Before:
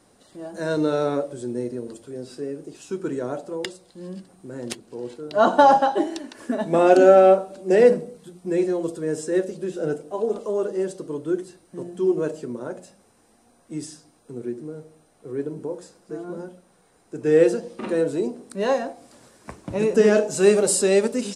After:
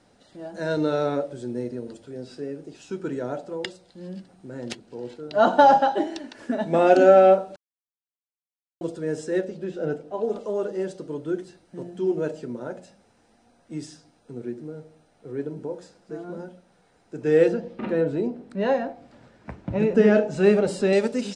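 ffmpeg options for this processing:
ffmpeg -i in.wav -filter_complex "[0:a]asettb=1/sr,asplit=3[link_01][link_02][link_03];[link_01]atrim=end=9.414[link_04];[link_02]atrim=start=9.41:end=10.23,asetpts=PTS-STARTPTS,afade=type=in:duration=0.004:curve=qsin,afade=type=out:start_time=0.816:duration=0.004:curve=qsin,highshelf=frequency=6500:gain=-11.5[link_05];[link_03]atrim=start=10.226[link_06];[link_04][link_05]acrossfade=duration=0.004:curve1=hsin:curve2=qsin[link_07];[link_07][link_06]acrossfade=duration=0.004:curve1=qsin:curve2=hsin,asettb=1/sr,asplit=3[link_08][link_09][link_10];[link_08]atrim=end=17.484[link_11];[link_09]atrim=start=17.48:end=20.93,asetpts=PTS-STARTPTS,afade=type=in:duration=0.004:curve=qsin,afade=type=out:start_time=3.446:duration=0.004:curve=qsin,bass=frequency=250:gain=5,treble=frequency=4000:gain=-12[link_12];[link_10]atrim=start=20.926[link_13];[link_11][link_12]acrossfade=duration=0.004:curve1=hsin:curve2=qsin[link_14];[link_14][link_13]acrossfade=duration=0.004:curve1=qsin:curve2=hsin,asplit=3[link_15][link_16][link_17];[link_15]atrim=end=7.56,asetpts=PTS-STARTPTS,afade=type=out:start_time=7.556:duration=0.004:curve=hsin[link_18];[link_16]atrim=start=7.56:end=8.81,asetpts=PTS-STARTPTS,volume=0[link_19];[link_17]atrim=start=8.81,asetpts=PTS-STARTPTS,afade=type=in:duration=0.004:curve=hsin[link_20];[link_18][link_19][link_20]concat=n=3:v=0:a=1,lowpass=5500,equalizer=frequency=370:width_type=o:width=0.71:gain=-3.5,bandreject=frequency=1100:width=7.6" out.wav

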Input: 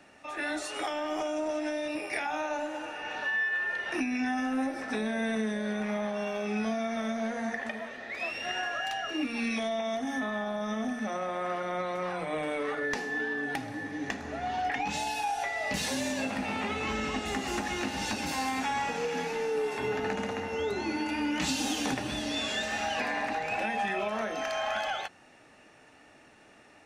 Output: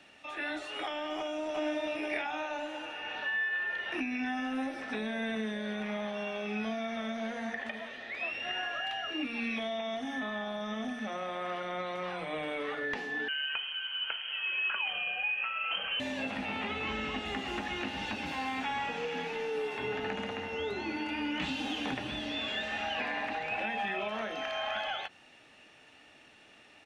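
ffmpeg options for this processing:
ffmpeg -i in.wav -filter_complex "[0:a]asplit=2[link_01][link_02];[link_02]afade=type=in:start_time=1.17:duration=0.01,afade=type=out:start_time=1.84:duration=0.01,aecho=0:1:370|740|1110:0.841395|0.126209|0.0189314[link_03];[link_01][link_03]amix=inputs=2:normalize=0,asettb=1/sr,asplit=3[link_04][link_05][link_06];[link_04]atrim=end=13.284[link_07];[link_05]atrim=start=13.28:end=16,asetpts=PTS-STARTPTS,afade=type=in:duration=0.004:curve=qsin,afade=type=out:start_time=2.716:duration=0.004:curve=qsin,lowpass=frequency=2800:width_type=q:width=0.5098,lowpass=frequency=2800:width_type=q:width=0.6013,lowpass=frequency=2800:width_type=q:width=0.9,lowpass=frequency=2800:width_type=q:width=2.563,afreqshift=-3300[link_08];[link_06]atrim=start=15.996[link_09];[link_07][link_08]acrossfade=duration=0.004:curve1=hsin:curve2=qsin[link_10];[link_10][link_09]acrossfade=duration=0.004:curve1=qsin:curve2=hsin,acrossover=split=2600[link_11][link_12];[link_12]acompressor=threshold=-53dB:ratio=4:attack=1:release=60[link_13];[link_11][link_13]amix=inputs=2:normalize=0,equalizer=frequency=3200:width=1.4:gain=11.5,volume=-4.5dB" out.wav

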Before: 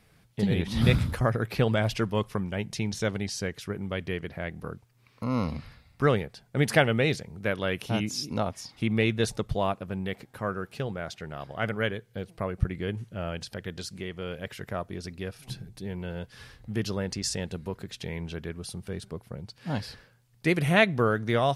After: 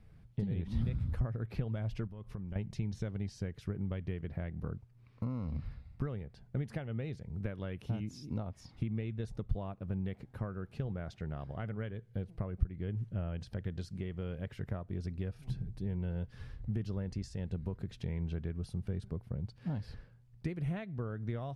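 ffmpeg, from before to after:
ffmpeg -i in.wav -filter_complex "[0:a]asettb=1/sr,asplit=3[link_01][link_02][link_03];[link_01]atrim=end=2.074[link_04];[link_02]atrim=start=2.07:end=2.56,asetpts=PTS-STARTPTS,afade=type=in:duration=0.004:curve=qsin,afade=type=out:start_time=0.486:duration=0.004:curve=qsin,acompressor=threshold=-39dB:ratio=10:attack=3.2:release=140:knee=1:detection=peak[link_05];[link_03]atrim=start=2.556[link_06];[link_04][link_05]acrossfade=duration=0.004:curve1=hsin:curve2=qsin[link_07];[link_07][link_06]acrossfade=duration=0.004:curve1=qsin:curve2=hsin,highshelf=frequency=9200:gain=10.5,acompressor=threshold=-33dB:ratio=12,aemphasis=mode=reproduction:type=riaa,volume=-8dB" out.wav

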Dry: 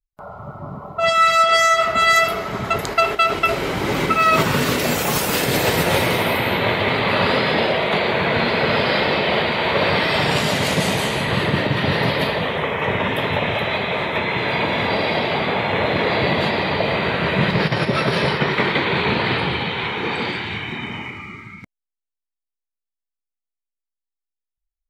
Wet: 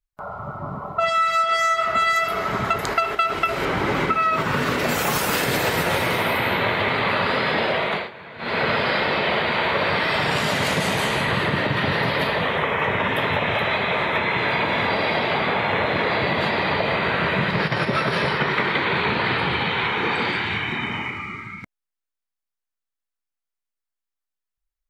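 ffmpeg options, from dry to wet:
ffmpeg -i in.wav -filter_complex "[0:a]asettb=1/sr,asplit=3[link_01][link_02][link_03];[link_01]atrim=end=3.654[link_04];[link_02]atrim=start=3.65:end=4.89,asetpts=PTS-STARTPTS,afade=type=in:duration=0.004:curve=qsin,afade=type=out:start_time=1.236:duration=0.004:curve=qsin,aemphasis=mode=reproduction:type=cd[link_05];[link_03]atrim=start=4.886[link_06];[link_04][link_05]acrossfade=duration=0.004:curve1=hsin:curve2=qsin[link_07];[link_07][link_06]acrossfade=duration=0.004:curve1=qsin:curve2=hsin,asplit=3[link_08][link_09][link_10];[link_08]atrim=end=8.1,asetpts=PTS-STARTPTS,afade=type=out:start_time=7.76:duration=0.34:silence=0.0707946[link_11];[link_09]atrim=start=8.1:end=8.38,asetpts=PTS-STARTPTS,volume=-23dB[link_12];[link_10]atrim=start=8.38,asetpts=PTS-STARTPTS,afade=type=in:duration=0.34:silence=0.0707946[link_13];[link_11][link_12][link_13]concat=n=3:v=0:a=1,equalizer=frequency=1400:width_type=o:width=1.4:gain=5.5,acompressor=threshold=-18dB:ratio=6" out.wav

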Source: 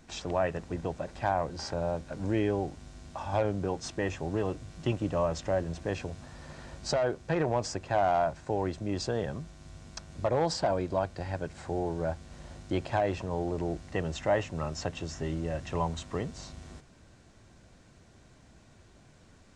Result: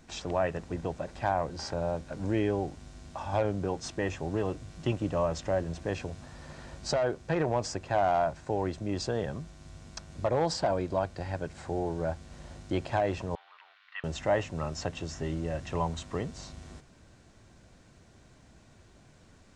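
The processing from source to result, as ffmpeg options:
ffmpeg -i in.wav -filter_complex "[0:a]asettb=1/sr,asplit=3[link_01][link_02][link_03];[link_01]atrim=end=13.354[link_04];[link_02]atrim=start=13.35:end=14.04,asetpts=PTS-STARTPTS,afade=type=in:duration=0.004:curve=qsin,afade=type=out:start_time=0.686:duration=0.004:curve=qsin,asuperpass=centerf=2100:order=8:qfactor=0.79[link_05];[link_03]atrim=start=14.036[link_06];[link_04][link_05]acrossfade=duration=0.004:curve1=hsin:curve2=qsin[link_07];[link_07][link_06]acrossfade=duration=0.004:curve1=qsin:curve2=hsin" out.wav

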